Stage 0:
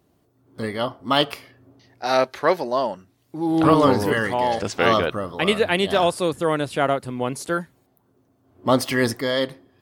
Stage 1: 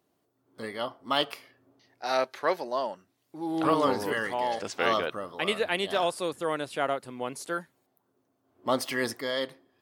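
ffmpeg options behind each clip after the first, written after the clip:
-af "highpass=f=370:p=1,volume=-6.5dB"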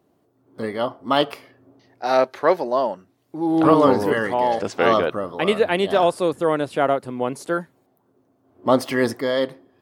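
-af "tiltshelf=f=1.3k:g=5.5,volume=6.5dB"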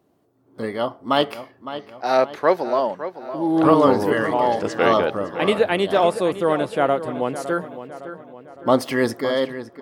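-filter_complex "[0:a]asplit=2[a][b];[b]adelay=560,lowpass=f=3.6k:p=1,volume=-12dB,asplit=2[c][d];[d]adelay=560,lowpass=f=3.6k:p=1,volume=0.49,asplit=2[e][f];[f]adelay=560,lowpass=f=3.6k:p=1,volume=0.49,asplit=2[g][h];[h]adelay=560,lowpass=f=3.6k:p=1,volume=0.49,asplit=2[i][j];[j]adelay=560,lowpass=f=3.6k:p=1,volume=0.49[k];[a][c][e][g][i][k]amix=inputs=6:normalize=0"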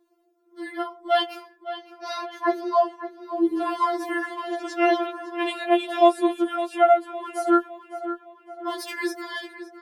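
-af "afftfilt=real='re*4*eq(mod(b,16),0)':imag='im*4*eq(mod(b,16),0)':win_size=2048:overlap=0.75,volume=-1.5dB"

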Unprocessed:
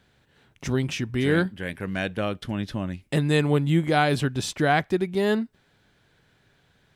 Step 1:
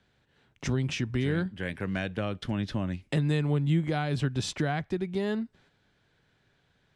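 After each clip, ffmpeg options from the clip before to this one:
-filter_complex "[0:a]agate=range=-6dB:threshold=-57dB:ratio=16:detection=peak,lowpass=7.6k,acrossover=split=160[a][b];[b]acompressor=threshold=-29dB:ratio=5[c];[a][c]amix=inputs=2:normalize=0"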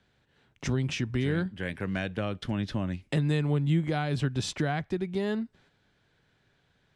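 -af anull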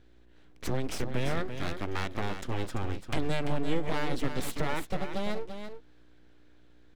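-af "aeval=exprs='val(0)+0.00178*(sin(2*PI*60*n/s)+sin(2*PI*2*60*n/s)/2+sin(2*PI*3*60*n/s)/3+sin(2*PI*4*60*n/s)/4+sin(2*PI*5*60*n/s)/5)':c=same,aeval=exprs='abs(val(0))':c=same,aecho=1:1:340:0.376"

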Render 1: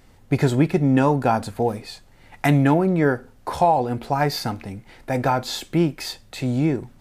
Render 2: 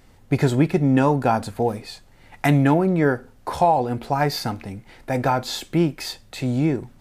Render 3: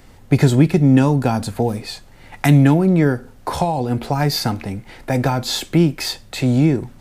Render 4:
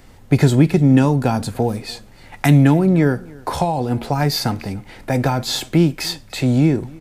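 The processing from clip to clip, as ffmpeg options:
-af anull
-filter_complex "[0:a]acrossover=split=290|3000[a][b][c];[b]acompressor=threshold=-28dB:ratio=4[d];[a][d][c]amix=inputs=3:normalize=0,volume=7dB"
-af "aecho=1:1:295:0.0631"

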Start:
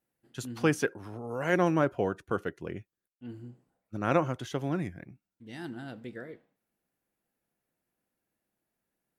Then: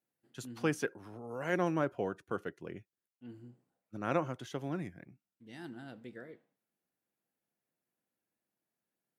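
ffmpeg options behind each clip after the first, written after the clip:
-af "highpass=110,volume=-6dB"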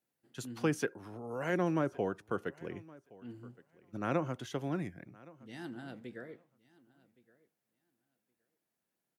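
-filter_complex "[0:a]acrossover=split=420[a][b];[b]acompressor=threshold=-34dB:ratio=6[c];[a][c]amix=inputs=2:normalize=0,aecho=1:1:1118|2236:0.075|0.0112,volume=2dB"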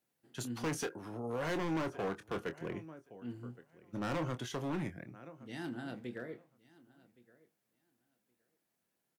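-filter_complex "[0:a]asoftclip=type=hard:threshold=-35.5dB,asplit=2[a][b];[b]adelay=25,volume=-10dB[c];[a][c]amix=inputs=2:normalize=0,volume=2.5dB"

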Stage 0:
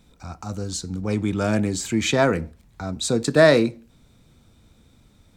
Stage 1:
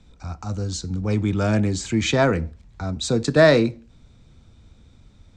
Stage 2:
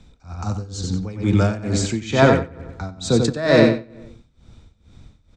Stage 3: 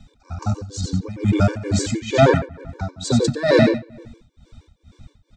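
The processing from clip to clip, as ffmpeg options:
-filter_complex "[0:a]lowpass=f=7.4k:w=0.5412,lowpass=f=7.4k:w=1.3066,acrossover=split=110|2700[a][b][c];[a]acontrast=90[d];[d][b][c]amix=inputs=3:normalize=0"
-filter_complex "[0:a]asplit=2[a][b];[b]adelay=92,lowpass=f=4.9k:p=1,volume=-4.5dB,asplit=2[c][d];[d]adelay=92,lowpass=f=4.9k:p=1,volume=0.46,asplit=2[e][f];[f]adelay=92,lowpass=f=4.9k:p=1,volume=0.46,asplit=2[g][h];[h]adelay=92,lowpass=f=4.9k:p=1,volume=0.46,asplit=2[i][j];[j]adelay=92,lowpass=f=4.9k:p=1,volume=0.46,asplit=2[k][l];[l]adelay=92,lowpass=f=4.9k:p=1,volume=0.46[m];[c][e][g][i][k][m]amix=inputs=6:normalize=0[n];[a][n]amix=inputs=2:normalize=0,tremolo=f=2.2:d=0.88,volume=4.5dB"
-filter_complex "[0:a]asplit=2[a][b];[b]asoftclip=type=tanh:threshold=-11.5dB,volume=-9dB[c];[a][c]amix=inputs=2:normalize=0,afftfilt=real='re*gt(sin(2*PI*6.4*pts/sr)*(1-2*mod(floor(b*sr/1024/300),2)),0)':imag='im*gt(sin(2*PI*6.4*pts/sr)*(1-2*mod(floor(b*sr/1024/300),2)),0)':win_size=1024:overlap=0.75,volume=1dB"

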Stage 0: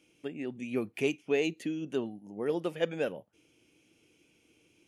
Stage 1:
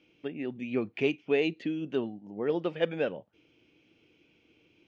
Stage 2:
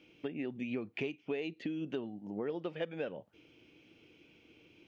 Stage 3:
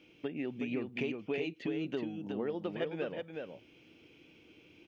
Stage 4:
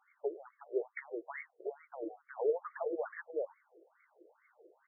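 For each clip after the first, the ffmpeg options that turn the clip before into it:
-af "lowpass=f=4.3k:w=0.5412,lowpass=f=4.3k:w=1.3066,volume=2dB"
-af "acompressor=threshold=-38dB:ratio=6,volume=3dB"
-af "aecho=1:1:369:0.562,volume=1dB"
-af "afftfilt=real='re*between(b*sr/1024,470*pow(1600/470,0.5+0.5*sin(2*PI*2.3*pts/sr))/1.41,470*pow(1600/470,0.5+0.5*sin(2*PI*2.3*pts/sr))*1.41)':imag='im*between(b*sr/1024,470*pow(1600/470,0.5+0.5*sin(2*PI*2.3*pts/sr))/1.41,470*pow(1600/470,0.5+0.5*sin(2*PI*2.3*pts/sr))*1.41)':win_size=1024:overlap=0.75,volume=7dB"

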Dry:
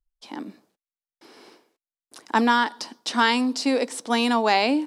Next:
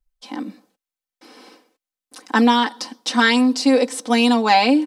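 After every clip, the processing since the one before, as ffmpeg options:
-af "aecho=1:1:3.9:0.79,volume=2.5dB"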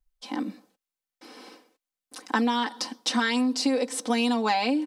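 -af "acompressor=threshold=-20dB:ratio=6,volume=-1.5dB"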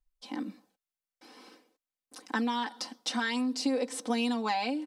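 -af "aphaser=in_gain=1:out_gain=1:delay=1.5:decay=0.23:speed=0.51:type=sinusoidal,volume=-6.5dB"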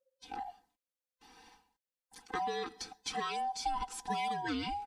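-af "afftfilt=real='real(if(lt(b,1008),b+24*(1-2*mod(floor(b/24),2)),b),0)':imag='imag(if(lt(b,1008),b+24*(1-2*mod(floor(b/24),2)),b),0)':win_size=2048:overlap=0.75,volume=-5.5dB"

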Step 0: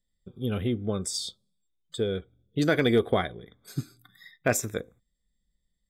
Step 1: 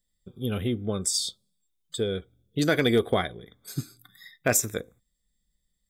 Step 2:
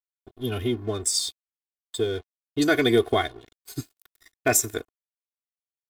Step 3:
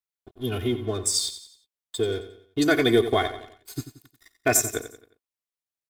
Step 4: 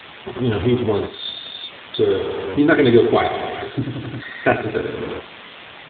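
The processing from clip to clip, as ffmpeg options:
-af "highshelf=f=4.5k:g=8.5"
-af "aeval=exprs='sgn(val(0))*max(abs(val(0))-0.00501,0)':c=same,aecho=1:1:2.8:0.94"
-af "aecho=1:1:89|178|267|356:0.251|0.108|0.0464|0.02"
-filter_complex "[0:a]aeval=exprs='val(0)+0.5*0.0668*sgn(val(0))':c=same,asplit=2[a][b];[b]adelay=25,volume=-7dB[c];[a][c]amix=inputs=2:normalize=0,volume=5dB" -ar 8000 -c:a libopencore_amrnb -b:a 7400

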